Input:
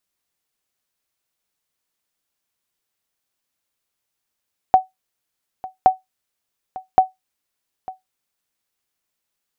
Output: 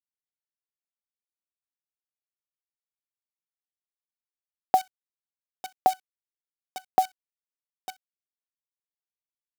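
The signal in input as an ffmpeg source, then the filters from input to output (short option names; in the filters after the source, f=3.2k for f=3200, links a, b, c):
-f lavfi -i "aevalsrc='0.75*(sin(2*PI*752*mod(t,1.12))*exp(-6.91*mod(t,1.12)/0.16)+0.106*sin(2*PI*752*max(mod(t,1.12)-0.9,0))*exp(-6.91*max(mod(t,1.12)-0.9,0)/0.16))':d=3.36:s=44100"
-af "acrusher=bits=6:dc=4:mix=0:aa=0.000001,highpass=240,equalizer=f=910:t=o:w=1.9:g=-6.5"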